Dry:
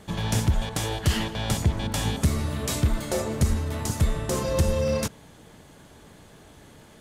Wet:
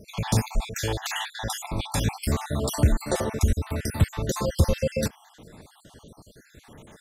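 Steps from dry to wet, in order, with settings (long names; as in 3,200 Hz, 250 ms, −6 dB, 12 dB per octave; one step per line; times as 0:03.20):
time-frequency cells dropped at random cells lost 55%
0:02.28–0:02.92: dynamic equaliser 740 Hz, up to +6 dB, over −47 dBFS, Q 1.3
level +3 dB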